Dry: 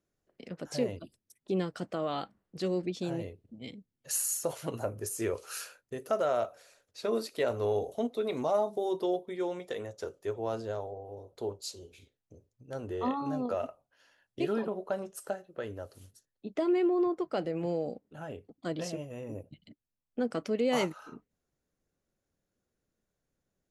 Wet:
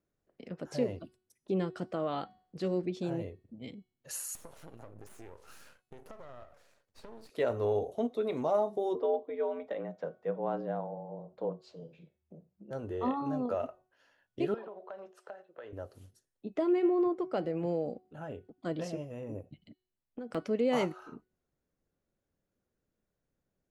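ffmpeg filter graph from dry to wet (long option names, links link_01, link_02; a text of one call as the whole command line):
ffmpeg -i in.wav -filter_complex "[0:a]asettb=1/sr,asplit=3[link_01][link_02][link_03];[link_01]atrim=end=4.354[link_04];[link_02]atrim=start=4.35:end=7.3,asetpts=PTS-STARTPTS,afade=type=in:duration=0.004:curve=qsin,afade=type=out:start_time=2.946:duration=0.004:curve=qsin,aeval=exprs='max(val(0),0)':channel_layout=same,acompressor=threshold=-44dB:ratio=6:attack=3.2:release=140:knee=1:detection=peak[link_05];[link_03]atrim=start=7.296[link_06];[link_04][link_05]acrossfade=duration=0.004:curve1=hsin:curve2=qsin[link_07];[link_07][link_06]acrossfade=duration=0.004:curve1=qsin:curve2=hsin,asettb=1/sr,asplit=3[link_08][link_09][link_10];[link_08]atrim=end=8.954[link_11];[link_09]atrim=start=8.95:end=12.71,asetpts=PTS-STARTPTS,afade=type=in:duration=0.004:curve=qsin,afade=type=out:start_time=3.756:duration=0.004:curve=qsin,lowpass=2400,lowshelf=frequency=120:gain=7.5,afreqshift=77[link_12];[link_10]atrim=start=12.706[link_13];[link_11][link_12]acrossfade=duration=0.004:curve1=hsin:curve2=qsin[link_14];[link_14][link_13]acrossfade=duration=0.004:curve1=qsin:curve2=hsin,asettb=1/sr,asplit=3[link_15][link_16][link_17];[link_15]atrim=end=14.544[link_18];[link_16]atrim=start=14.54:end=15.73,asetpts=PTS-STARTPTS,afade=type=in:duration=0.004:curve=qsin,afade=type=out:start_time=1.186:duration=0.004:curve=qsin,acrossover=split=410 4800:gain=0.141 1 0.0891[link_19][link_20][link_21];[link_19][link_20][link_21]amix=inputs=3:normalize=0,acompressor=threshold=-41dB:ratio=4:attack=3.2:release=140:knee=1:detection=peak[link_22];[link_17]atrim=start=15.726[link_23];[link_18][link_22]acrossfade=duration=0.004:curve1=hsin:curve2=qsin[link_24];[link_24][link_23]acrossfade=duration=0.004:curve1=qsin:curve2=hsin,asettb=1/sr,asplit=3[link_25][link_26][link_27];[link_25]atrim=end=19.384[link_28];[link_26]atrim=start=19.38:end=20.35,asetpts=PTS-STARTPTS,afade=type=in:duration=0.004:curve=qsin,afade=type=out:start_time=0.966:duration=0.004:curve=qsin,acompressor=threshold=-36dB:ratio=20:attack=3.2:release=140:knee=1:detection=peak,aeval=exprs='(mod(28.2*val(0)+1,2)-1)/28.2':channel_layout=same[link_29];[link_27]atrim=start=20.346[link_30];[link_28][link_29]acrossfade=duration=0.004:curve1=hsin:curve2=qsin[link_31];[link_31][link_30]acrossfade=duration=0.004:curve1=qsin:curve2=hsin,highshelf=frequency=2900:gain=-9,bandreject=frequency=369.5:width_type=h:width=4,bandreject=frequency=739:width_type=h:width=4,bandreject=frequency=1108.5:width_type=h:width=4,bandreject=frequency=1478:width_type=h:width=4,bandreject=frequency=1847.5:width_type=h:width=4,bandreject=frequency=2217:width_type=h:width=4,bandreject=frequency=2586.5:width_type=h:width=4,bandreject=frequency=2956:width_type=h:width=4,bandreject=frequency=3325.5:width_type=h:width=4,bandreject=frequency=3695:width_type=h:width=4,bandreject=frequency=4064.5:width_type=h:width=4,bandreject=frequency=4434:width_type=h:width=4,bandreject=frequency=4803.5:width_type=h:width=4,bandreject=frequency=5173:width_type=h:width=4,bandreject=frequency=5542.5:width_type=h:width=4,bandreject=frequency=5912:width_type=h:width=4,bandreject=frequency=6281.5:width_type=h:width=4,bandreject=frequency=6651:width_type=h:width=4,bandreject=frequency=7020.5:width_type=h:width=4,bandreject=frequency=7390:width_type=h:width=4,bandreject=frequency=7759.5:width_type=h:width=4,bandreject=frequency=8129:width_type=h:width=4,bandreject=frequency=8498.5:width_type=h:width=4,bandreject=frequency=8868:width_type=h:width=4,bandreject=frequency=9237.5:width_type=h:width=4,bandreject=frequency=9607:width_type=h:width=4,bandreject=frequency=9976.5:width_type=h:width=4,bandreject=frequency=10346:width_type=h:width=4,bandreject=frequency=10715.5:width_type=h:width=4,bandreject=frequency=11085:width_type=h:width=4,bandreject=frequency=11454.5:width_type=h:width=4,bandreject=frequency=11824:width_type=h:width=4,bandreject=frequency=12193.5:width_type=h:width=4,bandreject=frequency=12563:width_type=h:width=4,bandreject=frequency=12932.5:width_type=h:width=4,bandreject=frequency=13302:width_type=h:width=4,bandreject=frequency=13671.5:width_type=h:width=4,bandreject=frequency=14041:width_type=h:width=4" out.wav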